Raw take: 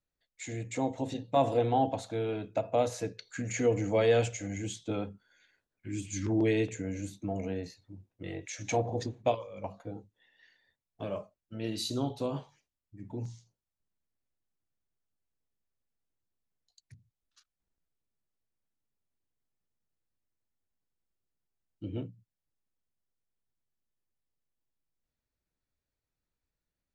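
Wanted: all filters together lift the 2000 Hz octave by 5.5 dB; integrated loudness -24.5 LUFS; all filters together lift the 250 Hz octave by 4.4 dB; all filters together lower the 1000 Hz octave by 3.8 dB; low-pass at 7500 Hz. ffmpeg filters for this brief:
-af "lowpass=7.5k,equalizer=f=250:t=o:g=6,equalizer=f=1k:t=o:g=-8.5,equalizer=f=2k:t=o:g=8.5,volume=7dB"

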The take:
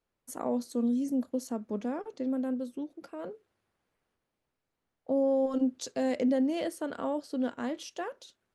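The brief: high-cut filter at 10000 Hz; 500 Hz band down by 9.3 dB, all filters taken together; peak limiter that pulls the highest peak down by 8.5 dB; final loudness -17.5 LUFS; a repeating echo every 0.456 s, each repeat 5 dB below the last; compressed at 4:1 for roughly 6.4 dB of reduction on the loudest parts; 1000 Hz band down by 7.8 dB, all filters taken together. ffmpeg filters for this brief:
-af "lowpass=10k,equalizer=f=500:t=o:g=-8.5,equalizer=f=1k:t=o:g=-7,acompressor=threshold=-33dB:ratio=4,alimiter=level_in=10dB:limit=-24dB:level=0:latency=1,volume=-10dB,aecho=1:1:456|912|1368|1824|2280|2736|3192:0.562|0.315|0.176|0.0988|0.0553|0.031|0.0173,volume=24dB"

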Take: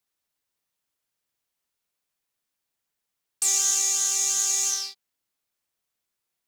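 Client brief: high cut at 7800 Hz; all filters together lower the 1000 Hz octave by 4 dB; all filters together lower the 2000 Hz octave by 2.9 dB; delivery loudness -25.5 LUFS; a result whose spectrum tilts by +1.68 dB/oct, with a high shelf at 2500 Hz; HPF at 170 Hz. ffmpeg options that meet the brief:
-af "highpass=170,lowpass=7.8k,equalizer=f=1k:t=o:g=-5,equalizer=f=2k:t=o:g=-7.5,highshelf=f=2.5k:g=8,volume=-9dB"

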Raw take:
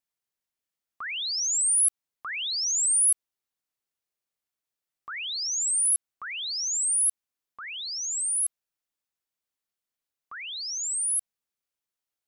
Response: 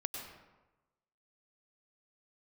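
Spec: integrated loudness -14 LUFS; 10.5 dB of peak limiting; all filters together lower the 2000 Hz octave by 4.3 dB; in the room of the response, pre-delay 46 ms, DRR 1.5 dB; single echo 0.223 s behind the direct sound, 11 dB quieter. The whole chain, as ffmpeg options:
-filter_complex "[0:a]equalizer=f=2k:t=o:g=-5.5,alimiter=level_in=2.5dB:limit=-24dB:level=0:latency=1,volume=-2.5dB,aecho=1:1:223:0.282,asplit=2[a][b];[1:a]atrim=start_sample=2205,adelay=46[c];[b][c]afir=irnorm=-1:irlink=0,volume=-2dB[d];[a][d]amix=inputs=2:normalize=0,volume=13dB"

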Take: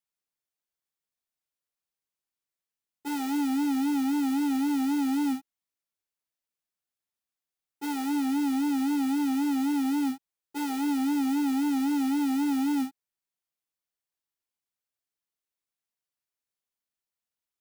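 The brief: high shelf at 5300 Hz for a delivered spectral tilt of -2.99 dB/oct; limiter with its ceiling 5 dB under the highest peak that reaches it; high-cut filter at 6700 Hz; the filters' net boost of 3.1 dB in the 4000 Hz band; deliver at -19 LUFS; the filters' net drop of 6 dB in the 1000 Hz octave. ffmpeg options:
-af "lowpass=6.7k,equalizer=f=1k:t=o:g=-8,equalizer=f=4k:t=o:g=7,highshelf=f=5.3k:g=-5,volume=12.5dB,alimiter=limit=-12dB:level=0:latency=1"

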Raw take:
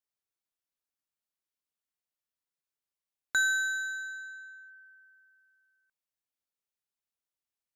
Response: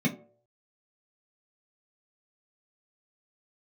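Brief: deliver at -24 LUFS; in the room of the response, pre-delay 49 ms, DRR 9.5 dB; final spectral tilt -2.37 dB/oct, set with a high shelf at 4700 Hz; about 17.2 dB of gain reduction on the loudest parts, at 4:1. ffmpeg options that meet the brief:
-filter_complex "[0:a]highshelf=f=4.7k:g=-7.5,acompressor=threshold=-47dB:ratio=4,asplit=2[a][b];[1:a]atrim=start_sample=2205,adelay=49[c];[b][c]afir=irnorm=-1:irlink=0,volume=-18dB[d];[a][d]amix=inputs=2:normalize=0,volume=22.5dB"

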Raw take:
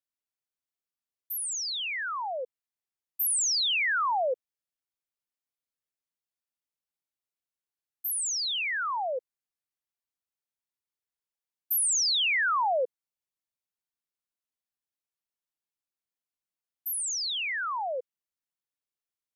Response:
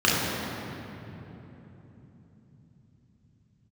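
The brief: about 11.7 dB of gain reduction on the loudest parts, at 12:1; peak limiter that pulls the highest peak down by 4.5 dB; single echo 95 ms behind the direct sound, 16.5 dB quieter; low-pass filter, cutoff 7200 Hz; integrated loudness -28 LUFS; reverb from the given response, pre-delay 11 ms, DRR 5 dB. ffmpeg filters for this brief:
-filter_complex "[0:a]lowpass=7.2k,acompressor=threshold=-37dB:ratio=12,alimiter=level_in=15.5dB:limit=-24dB:level=0:latency=1,volume=-15.5dB,aecho=1:1:95:0.15,asplit=2[a][b];[1:a]atrim=start_sample=2205,adelay=11[c];[b][c]afir=irnorm=-1:irlink=0,volume=-24.5dB[d];[a][d]amix=inputs=2:normalize=0,volume=13.5dB"

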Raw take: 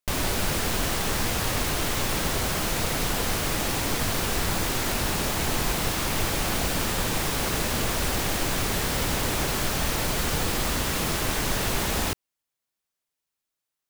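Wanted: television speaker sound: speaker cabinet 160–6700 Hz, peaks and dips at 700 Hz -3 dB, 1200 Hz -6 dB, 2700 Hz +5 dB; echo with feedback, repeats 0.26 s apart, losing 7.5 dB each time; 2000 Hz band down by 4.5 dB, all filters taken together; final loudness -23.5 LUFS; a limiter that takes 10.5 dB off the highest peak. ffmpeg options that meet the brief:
-af "equalizer=f=2k:t=o:g=-7.5,alimiter=limit=-23dB:level=0:latency=1,highpass=f=160:w=0.5412,highpass=f=160:w=1.3066,equalizer=f=700:t=q:w=4:g=-3,equalizer=f=1.2k:t=q:w=4:g=-6,equalizer=f=2.7k:t=q:w=4:g=5,lowpass=f=6.7k:w=0.5412,lowpass=f=6.7k:w=1.3066,aecho=1:1:260|520|780|1040|1300:0.422|0.177|0.0744|0.0312|0.0131,volume=10.5dB"

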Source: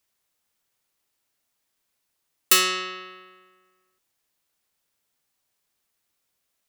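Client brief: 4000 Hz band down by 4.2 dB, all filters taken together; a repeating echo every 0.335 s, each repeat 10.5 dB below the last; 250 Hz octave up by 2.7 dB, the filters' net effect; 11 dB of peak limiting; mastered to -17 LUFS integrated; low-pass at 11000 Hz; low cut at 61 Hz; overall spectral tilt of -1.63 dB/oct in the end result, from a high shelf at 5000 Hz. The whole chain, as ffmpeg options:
-af "highpass=61,lowpass=11k,equalizer=f=250:t=o:g=6,equalizer=f=4k:t=o:g=-3,highshelf=f=5k:g=-6,alimiter=limit=-20.5dB:level=0:latency=1,aecho=1:1:335|670|1005:0.299|0.0896|0.0269,volume=15dB"

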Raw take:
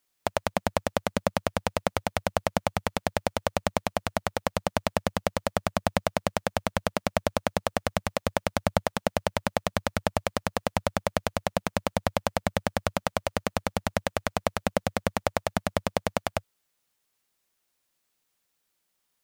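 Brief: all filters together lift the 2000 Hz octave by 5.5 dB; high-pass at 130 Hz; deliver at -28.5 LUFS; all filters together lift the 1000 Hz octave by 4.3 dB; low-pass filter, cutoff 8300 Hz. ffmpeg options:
-af "highpass=130,lowpass=8.3k,equalizer=f=1k:t=o:g=4.5,equalizer=f=2k:t=o:g=5.5,volume=-1.5dB"

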